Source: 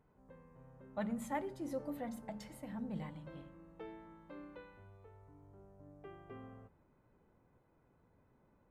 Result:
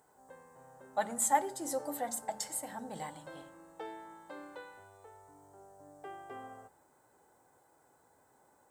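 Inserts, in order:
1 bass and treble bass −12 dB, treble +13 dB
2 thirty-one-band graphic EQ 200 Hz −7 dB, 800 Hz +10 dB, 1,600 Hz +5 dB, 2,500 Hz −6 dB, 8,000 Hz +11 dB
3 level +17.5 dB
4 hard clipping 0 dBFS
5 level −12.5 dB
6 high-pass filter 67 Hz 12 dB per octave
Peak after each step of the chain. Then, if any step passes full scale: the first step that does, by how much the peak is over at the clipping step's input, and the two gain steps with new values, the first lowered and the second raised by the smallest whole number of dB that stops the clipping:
−27.0, −21.0, −3.5, −3.5, −16.0, −16.0 dBFS
no step passes full scale

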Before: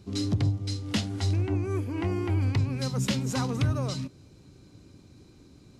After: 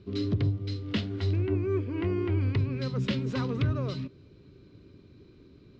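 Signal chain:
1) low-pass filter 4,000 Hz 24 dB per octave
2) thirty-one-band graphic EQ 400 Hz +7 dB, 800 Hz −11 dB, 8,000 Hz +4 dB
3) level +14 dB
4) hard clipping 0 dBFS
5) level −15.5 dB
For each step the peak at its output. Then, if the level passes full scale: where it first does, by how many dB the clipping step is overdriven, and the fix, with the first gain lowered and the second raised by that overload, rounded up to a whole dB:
−17.0, −16.0, −2.0, −2.0, −17.5 dBFS
no step passes full scale

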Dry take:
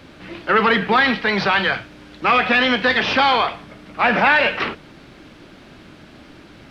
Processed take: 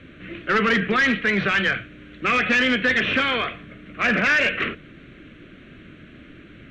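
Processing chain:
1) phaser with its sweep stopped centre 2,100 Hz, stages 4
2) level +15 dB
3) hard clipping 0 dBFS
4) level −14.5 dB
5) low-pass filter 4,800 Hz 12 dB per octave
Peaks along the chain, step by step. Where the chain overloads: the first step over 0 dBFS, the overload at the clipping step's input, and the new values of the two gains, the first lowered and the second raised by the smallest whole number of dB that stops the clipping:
−7.5, +7.5, 0.0, −14.5, −14.0 dBFS
step 2, 7.5 dB
step 2 +7 dB, step 4 −6.5 dB

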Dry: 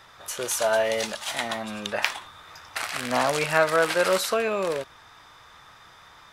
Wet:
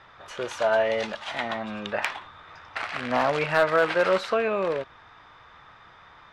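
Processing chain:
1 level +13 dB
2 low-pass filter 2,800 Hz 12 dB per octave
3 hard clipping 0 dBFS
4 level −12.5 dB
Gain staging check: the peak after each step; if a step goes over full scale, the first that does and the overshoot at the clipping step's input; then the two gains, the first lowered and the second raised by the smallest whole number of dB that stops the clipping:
+10.5, +8.0, 0.0, −12.5 dBFS
step 1, 8.0 dB
step 1 +5 dB, step 4 −4.5 dB

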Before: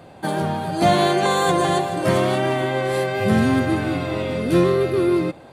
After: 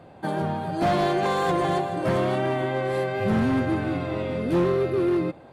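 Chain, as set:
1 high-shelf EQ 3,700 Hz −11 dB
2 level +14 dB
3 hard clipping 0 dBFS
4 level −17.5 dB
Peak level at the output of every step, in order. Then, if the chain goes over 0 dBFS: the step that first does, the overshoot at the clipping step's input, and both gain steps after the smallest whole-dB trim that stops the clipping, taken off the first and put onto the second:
−6.0, +8.0, 0.0, −17.5 dBFS
step 2, 8.0 dB
step 2 +6 dB, step 4 −9.5 dB

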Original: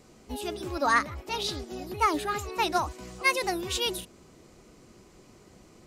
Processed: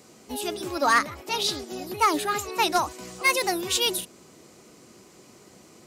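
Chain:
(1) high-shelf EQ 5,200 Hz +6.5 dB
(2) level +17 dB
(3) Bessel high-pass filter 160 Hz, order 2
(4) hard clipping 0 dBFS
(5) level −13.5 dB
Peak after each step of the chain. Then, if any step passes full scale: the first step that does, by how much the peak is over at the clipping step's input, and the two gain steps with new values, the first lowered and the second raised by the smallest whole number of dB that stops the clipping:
−8.5, +8.5, +8.0, 0.0, −13.5 dBFS
step 2, 8.0 dB
step 2 +9 dB, step 5 −5.5 dB

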